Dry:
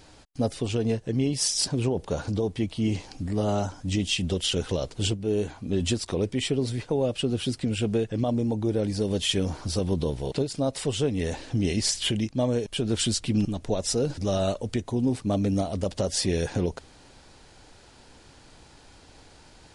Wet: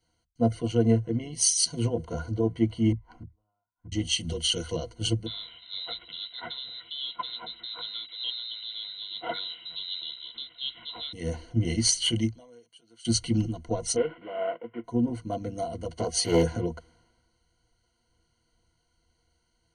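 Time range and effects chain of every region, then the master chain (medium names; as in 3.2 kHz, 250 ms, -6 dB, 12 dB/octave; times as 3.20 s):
2.92–3.92 s: FFT filter 550 Hz 0 dB, 1 kHz +12 dB, 5.7 kHz -10 dB + inverted gate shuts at -23 dBFS, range -39 dB
5.26–11.13 s: one-bit delta coder 64 kbps, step -34.5 dBFS + frequency inversion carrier 3.9 kHz
12.28–13.05 s: high-pass 980 Hz 6 dB/octave + compression 2:1, threshold -51 dBFS
13.96–14.84 s: CVSD coder 16 kbps + high-pass 310 Hz
15.98–16.43 s: small resonant body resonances 420/730/1100/2500 Hz, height 13 dB, ringing for 90 ms + loudspeaker Doppler distortion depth 0.48 ms
whole clip: rippled EQ curve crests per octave 1.9, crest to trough 18 dB; three bands expanded up and down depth 70%; trim -6.5 dB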